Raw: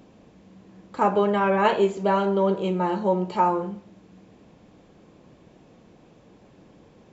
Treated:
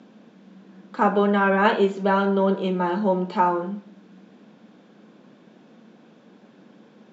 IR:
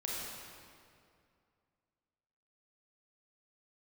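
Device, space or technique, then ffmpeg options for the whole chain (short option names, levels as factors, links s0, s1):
television speaker: -af "highpass=f=170:w=0.5412,highpass=f=170:w=1.3066,equalizer=f=220:t=q:w=4:g=8,equalizer=f=1500:t=q:w=4:g=8,equalizer=f=3500:t=q:w=4:g=4,lowpass=f=6500:w=0.5412,lowpass=f=6500:w=1.3066"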